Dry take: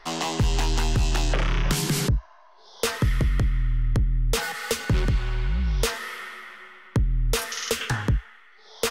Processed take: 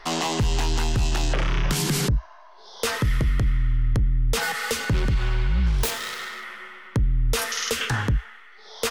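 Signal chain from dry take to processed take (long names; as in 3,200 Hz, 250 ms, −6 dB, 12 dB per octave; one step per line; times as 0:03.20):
0:05.66–0:06.44: phase distortion by the signal itself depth 0.52 ms
brickwall limiter −19.5 dBFS, peak gain reduction 6 dB
level +4.5 dB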